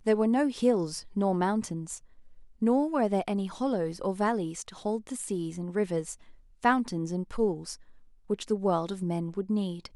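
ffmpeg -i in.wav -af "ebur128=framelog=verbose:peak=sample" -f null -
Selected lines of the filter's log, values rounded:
Integrated loudness:
  I:         -29.5 LUFS
  Threshold: -40.1 LUFS
Loudness range:
  LRA:         2.9 LU
  Threshold: -50.4 LUFS
  LRA low:   -31.6 LUFS
  LRA high:  -28.7 LUFS
Sample peak:
  Peak:      -11.8 dBFS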